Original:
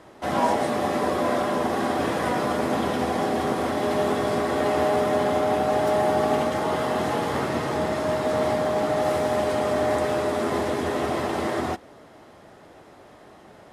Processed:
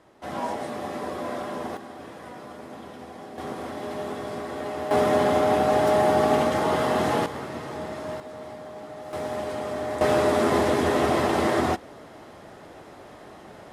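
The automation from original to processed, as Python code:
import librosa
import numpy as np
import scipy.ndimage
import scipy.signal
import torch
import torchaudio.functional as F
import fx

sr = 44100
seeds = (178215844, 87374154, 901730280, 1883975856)

y = fx.gain(x, sr, db=fx.steps((0.0, -8.0), (1.77, -16.5), (3.38, -9.0), (4.91, 1.5), (7.26, -8.5), (8.2, -16.0), (9.13, -7.0), (10.01, 3.5)))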